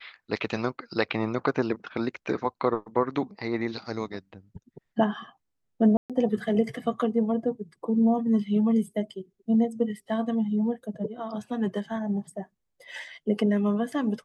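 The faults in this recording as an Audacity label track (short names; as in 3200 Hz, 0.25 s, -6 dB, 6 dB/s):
5.970000	6.100000	gap 0.127 s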